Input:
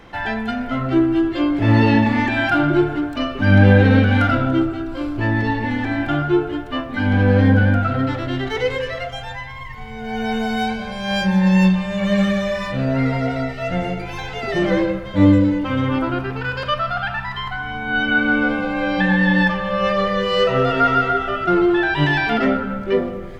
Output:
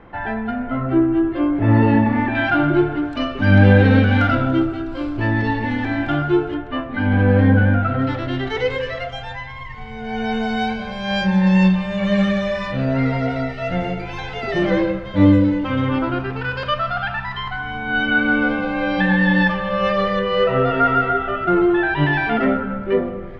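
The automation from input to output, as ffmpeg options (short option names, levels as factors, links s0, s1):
-af "asetnsamples=n=441:p=0,asendcmd='2.35 lowpass f 3300;3.05 lowpass f 5700;6.54 lowpass f 2700;8.02 lowpass f 5000;20.19 lowpass f 2500',lowpass=1700"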